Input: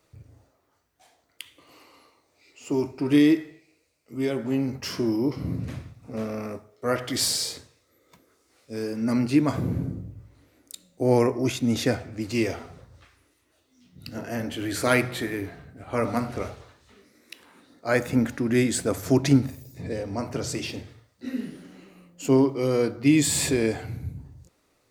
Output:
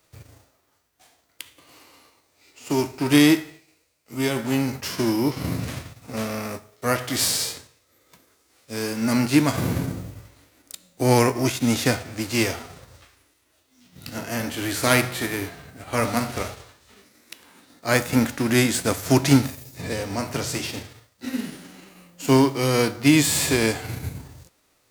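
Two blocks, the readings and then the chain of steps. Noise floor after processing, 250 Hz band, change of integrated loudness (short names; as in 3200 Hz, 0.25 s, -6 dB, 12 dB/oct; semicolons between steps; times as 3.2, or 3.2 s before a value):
-66 dBFS, +2.0 dB, +3.0 dB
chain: spectral whitening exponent 0.6; gain +2.5 dB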